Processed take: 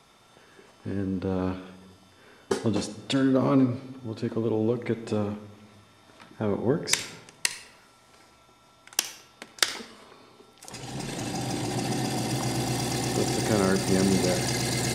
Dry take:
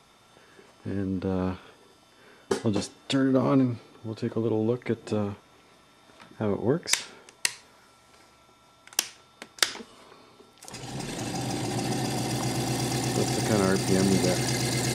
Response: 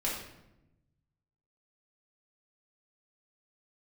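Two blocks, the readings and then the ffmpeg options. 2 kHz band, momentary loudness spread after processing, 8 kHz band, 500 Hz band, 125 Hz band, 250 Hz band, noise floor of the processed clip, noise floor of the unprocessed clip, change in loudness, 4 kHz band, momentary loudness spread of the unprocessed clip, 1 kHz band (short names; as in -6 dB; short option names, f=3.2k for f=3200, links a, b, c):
0.0 dB, 16 LU, 0.0 dB, +0.5 dB, -0.5 dB, +0.5 dB, -57 dBFS, -58 dBFS, 0.0 dB, 0.0 dB, 15 LU, 0.0 dB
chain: -filter_complex "[0:a]asplit=2[a][b];[1:a]atrim=start_sample=2205,adelay=57[c];[b][c]afir=irnorm=-1:irlink=0,volume=-18dB[d];[a][d]amix=inputs=2:normalize=0"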